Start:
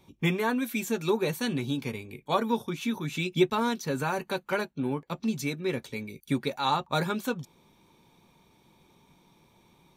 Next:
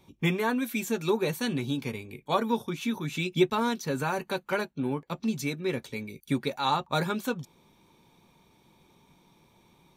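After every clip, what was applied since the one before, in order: nothing audible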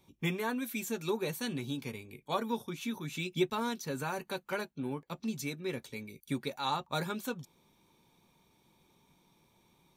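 high shelf 5000 Hz +5.5 dB; gain -7 dB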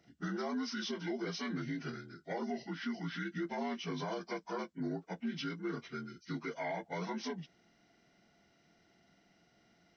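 inharmonic rescaling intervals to 78%; limiter -30.5 dBFS, peak gain reduction 11 dB; gain +1 dB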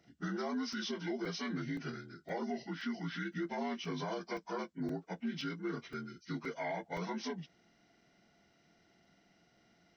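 crackling interface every 0.52 s, samples 128, zero, from 0.73

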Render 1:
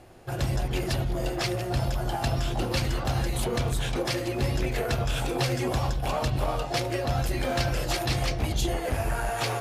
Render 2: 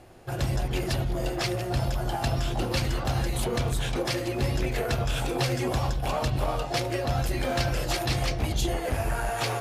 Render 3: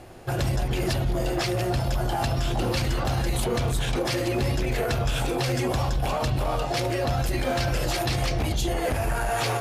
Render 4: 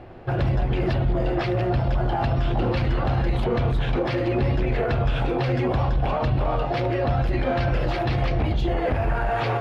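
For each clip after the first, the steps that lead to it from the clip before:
nothing audible
limiter -23 dBFS, peak gain reduction 8.5 dB; gain +6 dB
air absorption 360 m; gain +3.5 dB

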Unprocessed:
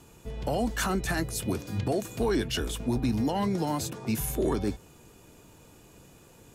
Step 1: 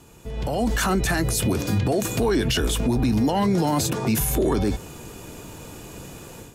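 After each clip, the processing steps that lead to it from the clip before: limiter -28.5 dBFS, peak gain reduction 10 dB; AGC gain up to 11 dB; gain +3.5 dB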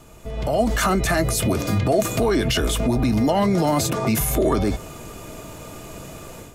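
added noise brown -50 dBFS; small resonant body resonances 640/1200/2100 Hz, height 11 dB, ringing for 50 ms; gain +1 dB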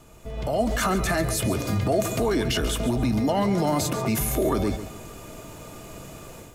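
lo-fi delay 0.139 s, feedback 35%, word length 8-bit, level -12 dB; gain -4 dB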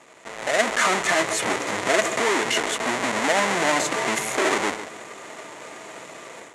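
half-waves squared off; speaker cabinet 430–9500 Hz, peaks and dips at 1000 Hz +3 dB, 2000 Hz +8 dB, 4900 Hz -4 dB, 7000 Hz +5 dB

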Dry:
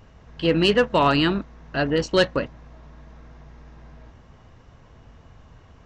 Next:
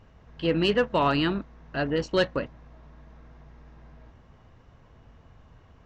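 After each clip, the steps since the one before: high shelf 6600 Hz -9.5 dB; gain -4.5 dB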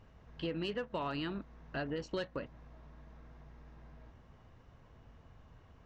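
compressor 5:1, threshold -30 dBFS, peak gain reduction 11.5 dB; gain -5 dB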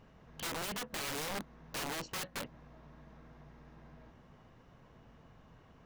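resonant low shelf 120 Hz -6 dB, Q 1.5; wrapped overs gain 35.5 dB; gain +2 dB

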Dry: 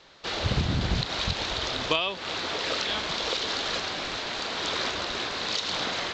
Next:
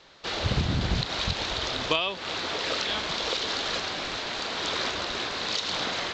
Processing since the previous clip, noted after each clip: nothing audible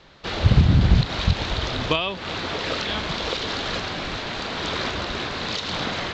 tone controls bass +9 dB, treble -6 dB; gain +3 dB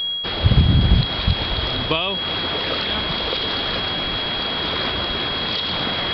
whine 3300 Hz -27 dBFS; downsampling 11025 Hz; reverse; upward compressor, threshold -19 dBFS; reverse; gain +1 dB

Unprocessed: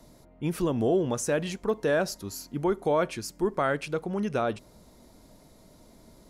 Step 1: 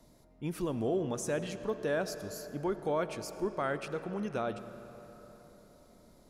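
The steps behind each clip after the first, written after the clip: reverb RT60 4.2 s, pre-delay 45 ms, DRR 11 dB; gain -7 dB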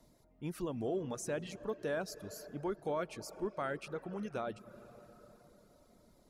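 reverb removal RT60 0.55 s; gain -4 dB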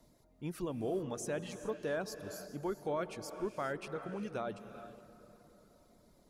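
non-linear reverb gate 0.45 s rising, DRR 11 dB

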